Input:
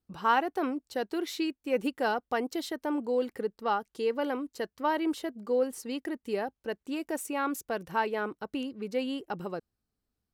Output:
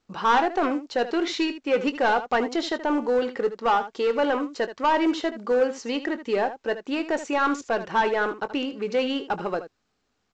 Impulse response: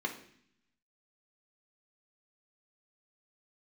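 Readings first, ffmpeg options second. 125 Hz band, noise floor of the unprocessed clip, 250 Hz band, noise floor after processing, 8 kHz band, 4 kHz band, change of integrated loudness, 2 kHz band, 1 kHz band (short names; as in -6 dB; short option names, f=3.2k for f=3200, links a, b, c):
n/a, under -85 dBFS, +6.0 dB, -74 dBFS, +2.0 dB, +8.5 dB, +7.0 dB, +8.5 dB, +7.5 dB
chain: -filter_complex "[0:a]asplit=2[a][b];[b]highpass=f=720:p=1,volume=18dB,asoftclip=type=tanh:threshold=-14dB[c];[a][c]amix=inputs=2:normalize=0,lowpass=f=2.4k:p=1,volume=-6dB,aecho=1:1:21|77:0.211|0.237,volume=2dB" -ar 16000 -c:a pcm_mulaw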